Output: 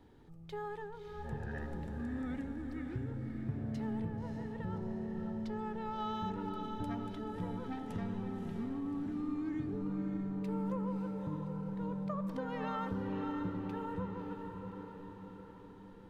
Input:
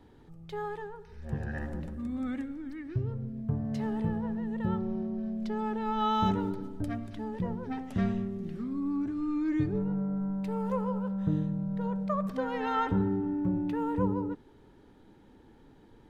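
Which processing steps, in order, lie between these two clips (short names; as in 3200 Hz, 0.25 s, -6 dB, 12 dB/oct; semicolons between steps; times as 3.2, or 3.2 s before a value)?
compressor, threshold -32 dBFS, peak gain reduction 9.5 dB; on a send: diffused feedback echo 0.587 s, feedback 56%, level -5 dB; on the sum: gain -4 dB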